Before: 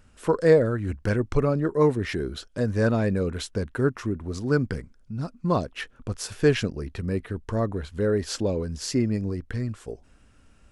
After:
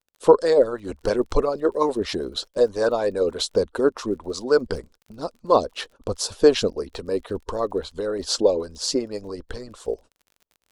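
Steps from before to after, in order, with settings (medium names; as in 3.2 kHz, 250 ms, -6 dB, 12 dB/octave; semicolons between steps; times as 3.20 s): gate -47 dBFS, range -36 dB; bass shelf 100 Hz +7.5 dB; harmonic-percussive split harmonic -16 dB; graphic EQ 125/500/1000/2000/4000/8000 Hz -9/+12/+8/-8/+11/+5 dB; crackle 34 per s -42 dBFS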